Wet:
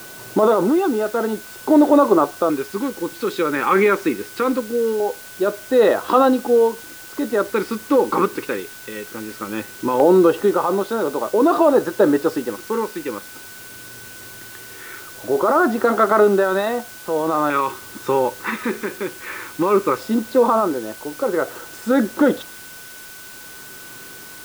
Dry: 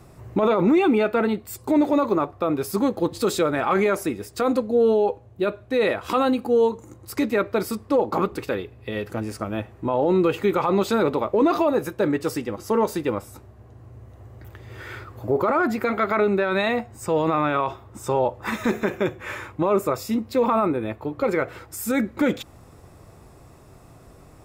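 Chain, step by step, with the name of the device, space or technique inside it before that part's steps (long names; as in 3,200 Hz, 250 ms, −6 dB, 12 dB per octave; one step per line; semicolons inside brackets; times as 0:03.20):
shortwave radio (band-pass filter 260–3,000 Hz; amplitude tremolo 0.5 Hz, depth 61%; auto-filter notch square 0.2 Hz 670–2,300 Hz; steady tone 1,500 Hz −50 dBFS; white noise bed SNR 20 dB)
level +8.5 dB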